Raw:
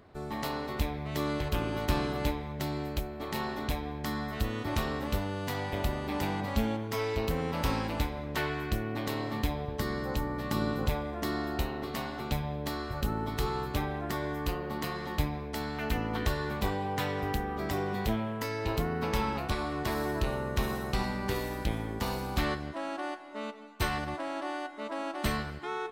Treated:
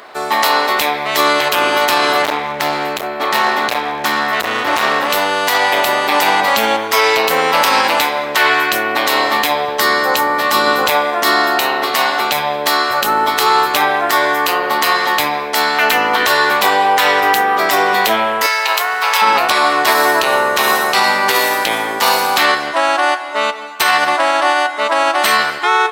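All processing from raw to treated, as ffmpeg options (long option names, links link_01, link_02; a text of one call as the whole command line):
ffmpeg -i in.wav -filter_complex "[0:a]asettb=1/sr,asplit=3[link_01][link_02][link_03];[link_01]atrim=end=2.224[link_04];[link_02]atrim=start=2.22:end=5.1,asetpts=PTS-STARTPTS,afade=type=in:duration=0.004:curve=qsin,afade=type=out:start_time=2.876:duration=0.004:curve=qsin,bass=frequency=250:gain=5,treble=frequency=4000:gain=-7,volume=30dB,asoftclip=hard,volume=-30dB[link_05];[link_03]atrim=start=5.096[link_06];[link_04][link_05]acrossfade=duration=0.004:curve1=hsin:curve2=qsin[link_07];[link_07][link_06]acrossfade=duration=0.004:curve1=qsin:curve2=hsin,asettb=1/sr,asplit=3[link_08][link_09][link_10];[link_08]atrim=end=18.464[link_11];[link_09]atrim=start=18.46:end=19.22,asetpts=PTS-STARTPTS,afade=type=in:duration=0.004:curve=qsin,afade=type=out:start_time=0.756:duration=0.004:curve=qsin,highpass=860,aeval=exprs='sgn(val(0))*max(abs(val(0))-0.0015,0)':channel_layout=same,aeval=exprs='val(0)+0.00112*(sin(2*PI*50*n/s)+sin(2*PI*2*50*n/s)/2+sin(2*PI*3*50*n/s)/3+sin(2*PI*4*50*n/s)/4+sin(2*PI*5*50*n/s)/5)':channel_layout=same[link_12];[link_10]atrim=start=19.216[link_13];[link_11][link_12]acrossfade=duration=0.004:curve1=hsin:curve2=qsin[link_14];[link_14][link_13]acrossfade=duration=0.004:curve1=qsin:curve2=hsin,highpass=760,acontrast=76,alimiter=level_in=20.5dB:limit=-1dB:release=50:level=0:latency=1,volume=-1dB" out.wav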